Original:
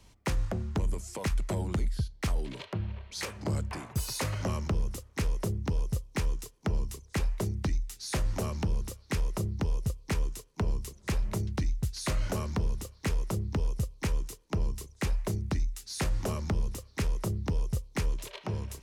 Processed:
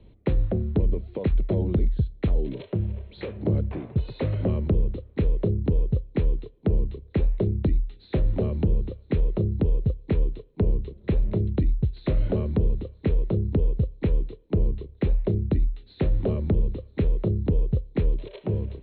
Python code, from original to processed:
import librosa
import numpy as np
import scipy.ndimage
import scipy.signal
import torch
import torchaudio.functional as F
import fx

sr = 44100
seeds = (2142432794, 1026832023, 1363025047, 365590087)

y = scipy.signal.sosfilt(scipy.signal.cheby1(8, 1.0, 4100.0, 'lowpass', fs=sr, output='sos'), x)
y = fx.low_shelf_res(y, sr, hz=670.0, db=12.0, q=1.5)
y = y * librosa.db_to_amplitude(-4.0)